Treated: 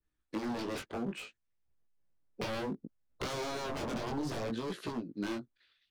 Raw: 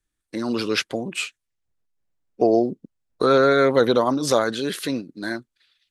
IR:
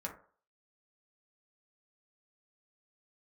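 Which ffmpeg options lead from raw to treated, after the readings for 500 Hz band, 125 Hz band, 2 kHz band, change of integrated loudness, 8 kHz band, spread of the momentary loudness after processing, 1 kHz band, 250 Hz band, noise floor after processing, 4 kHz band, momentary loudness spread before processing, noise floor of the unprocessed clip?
-19.5 dB, -10.5 dB, -16.0 dB, -17.0 dB, -15.0 dB, 7 LU, -15.5 dB, -13.5 dB, -82 dBFS, -15.0 dB, 14 LU, -81 dBFS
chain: -filter_complex "[0:a]aemphasis=mode=reproduction:type=75fm,aeval=exprs='0.0668*(abs(mod(val(0)/0.0668+3,4)-2)-1)':c=same,acrossover=split=820|3400[a][b][c];[a]acompressor=threshold=-31dB:ratio=4[d];[b]acompressor=threshold=-43dB:ratio=4[e];[c]acompressor=threshold=-41dB:ratio=4[f];[d][e][f]amix=inputs=3:normalize=0,flanger=delay=16:depth=6.1:speed=0.63,adynamicequalizer=threshold=0.00251:dfrequency=1500:dqfactor=0.7:tfrequency=1500:tqfactor=0.7:attack=5:release=100:ratio=0.375:range=2.5:mode=cutabove:tftype=highshelf"

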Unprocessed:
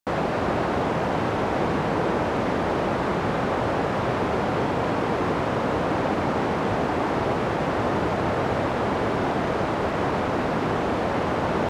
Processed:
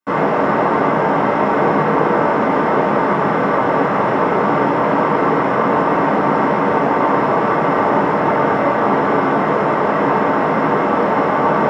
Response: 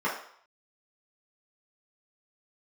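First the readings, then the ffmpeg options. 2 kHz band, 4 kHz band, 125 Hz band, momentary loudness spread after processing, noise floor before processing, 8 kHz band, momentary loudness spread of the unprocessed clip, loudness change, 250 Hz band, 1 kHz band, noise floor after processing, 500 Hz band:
+9.0 dB, +0.5 dB, +3.5 dB, 1 LU, -26 dBFS, n/a, 1 LU, +9.0 dB, +8.0 dB, +11.0 dB, -17 dBFS, +8.5 dB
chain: -filter_complex "[1:a]atrim=start_sample=2205[a];[0:a][a]afir=irnorm=-1:irlink=0,volume=-2.5dB"

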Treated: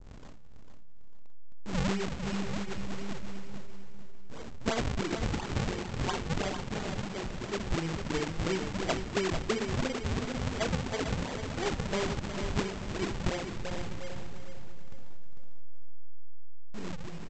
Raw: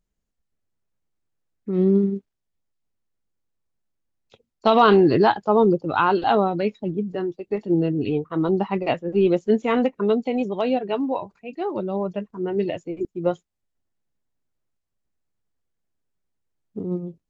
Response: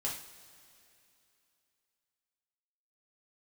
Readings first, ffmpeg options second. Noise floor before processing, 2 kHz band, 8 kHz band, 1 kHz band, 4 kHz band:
-80 dBFS, -5.0 dB, n/a, -14.5 dB, -2.0 dB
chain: -filter_complex "[0:a]aeval=exprs='val(0)+0.5*0.119*sgn(val(0))':c=same,dynaudnorm=f=330:g=9:m=14dB,agate=range=-23dB:threshold=-10dB:ratio=16:detection=peak,asplit=2[a][b];[1:a]atrim=start_sample=2205,adelay=42[c];[b][c]afir=irnorm=-1:irlink=0,volume=-5dB[d];[a][d]amix=inputs=2:normalize=0,acompressor=threshold=-29dB:ratio=16,aresample=16000,acrusher=samples=28:mix=1:aa=0.000001:lfo=1:lforange=44.8:lforate=2.9,aresample=44100,aecho=1:1:449|898|1347|1796:0.398|0.131|0.0434|0.0143,adynamicequalizer=threshold=0.00398:dfrequency=2700:dqfactor=0.75:tfrequency=2700:tqfactor=0.75:attack=5:release=100:ratio=0.375:range=1.5:mode=boostabove:tftype=bell"

